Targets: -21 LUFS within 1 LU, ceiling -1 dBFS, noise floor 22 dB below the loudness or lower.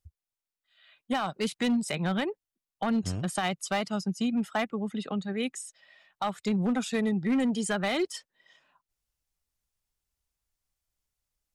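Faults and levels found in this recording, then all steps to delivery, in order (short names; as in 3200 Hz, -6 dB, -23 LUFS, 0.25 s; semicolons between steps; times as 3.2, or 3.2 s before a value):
clipped 1.2%; flat tops at -21.5 dBFS; loudness -30.0 LUFS; peak -21.5 dBFS; loudness target -21.0 LUFS
-> clip repair -21.5 dBFS; gain +9 dB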